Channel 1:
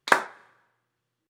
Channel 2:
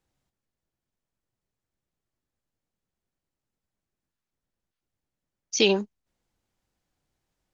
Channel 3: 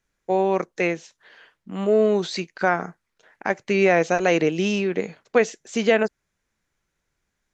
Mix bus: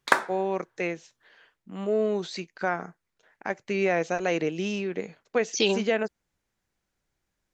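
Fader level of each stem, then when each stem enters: -1.5 dB, -3.0 dB, -7.0 dB; 0.00 s, 0.00 s, 0.00 s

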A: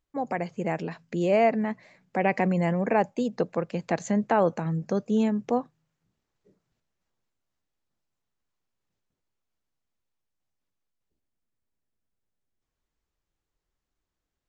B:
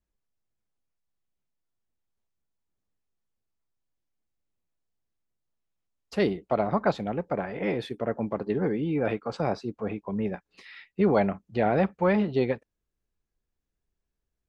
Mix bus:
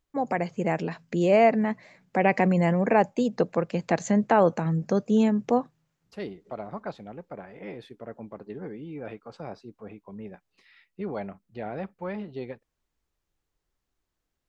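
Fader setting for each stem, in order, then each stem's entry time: +2.5 dB, -11.0 dB; 0.00 s, 0.00 s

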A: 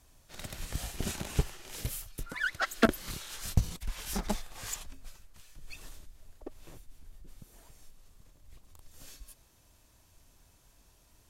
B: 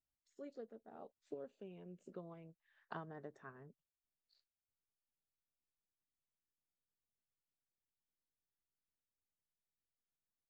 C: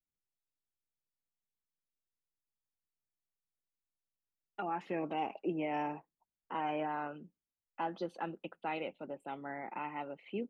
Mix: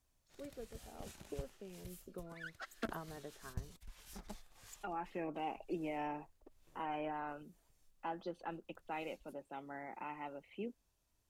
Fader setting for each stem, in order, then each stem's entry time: -17.5 dB, +1.0 dB, -5.0 dB; 0.00 s, 0.00 s, 0.25 s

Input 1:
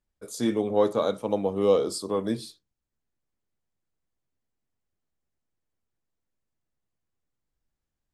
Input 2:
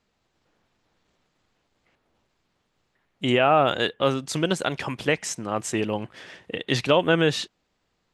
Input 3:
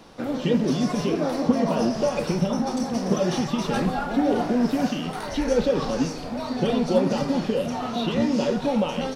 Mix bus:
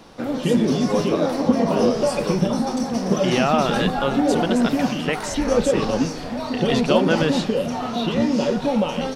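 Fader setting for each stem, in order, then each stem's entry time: -1.0 dB, -1.5 dB, +2.5 dB; 0.15 s, 0.00 s, 0.00 s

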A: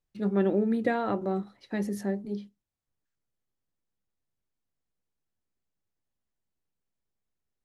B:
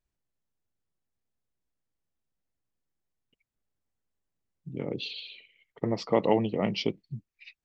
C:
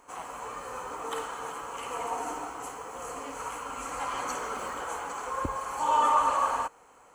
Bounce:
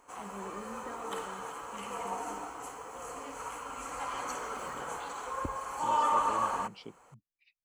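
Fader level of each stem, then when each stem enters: -20.0 dB, -18.5 dB, -4.0 dB; 0.00 s, 0.00 s, 0.00 s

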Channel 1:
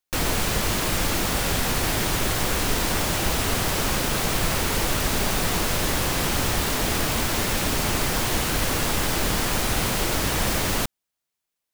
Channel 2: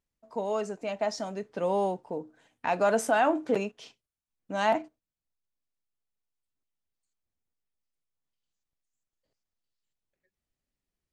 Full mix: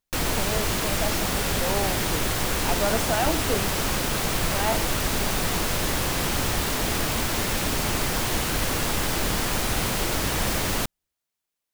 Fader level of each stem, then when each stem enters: -1.5 dB, -2.0 dB; 0.00 s, 0.00 s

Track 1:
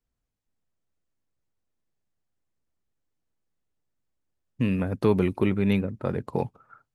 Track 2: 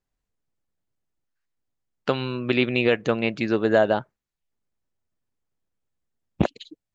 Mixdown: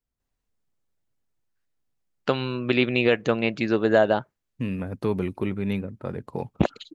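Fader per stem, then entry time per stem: -4.0 dB, 0.0 dB; 0.00 s, 0.20 s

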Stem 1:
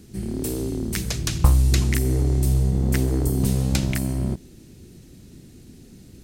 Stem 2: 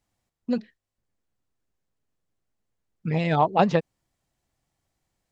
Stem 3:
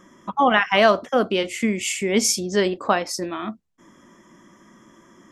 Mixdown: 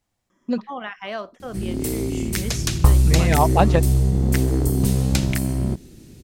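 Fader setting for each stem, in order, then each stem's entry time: +2.0 dB, +2.0 dB, -15.0 dB; 1.40 s, 0.00 s, 0.30 s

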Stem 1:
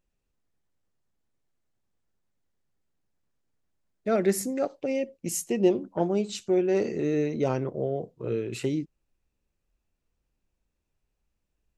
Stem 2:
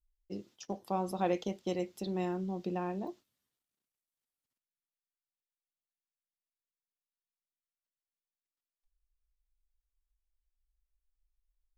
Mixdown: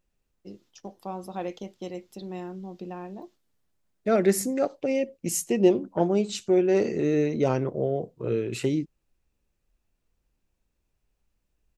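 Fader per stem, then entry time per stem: +2.5 dB, -2.0 dB; 0.00 s, 0.15 s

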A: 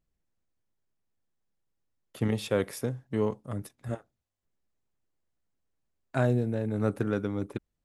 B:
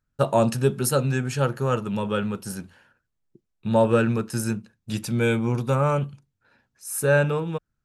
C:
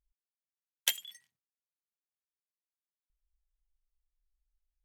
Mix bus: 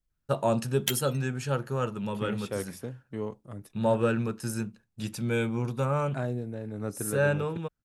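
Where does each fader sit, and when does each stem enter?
-6.5 dB, -6.0 dB, 0.0 dB; 0.00 s, 0.10 s, 0.00 s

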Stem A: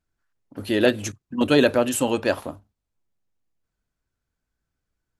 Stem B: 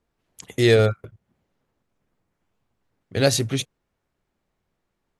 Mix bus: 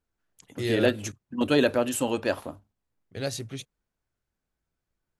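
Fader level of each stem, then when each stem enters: -4.5 dB, -12.5 dB; 0.00 s, 0.00 s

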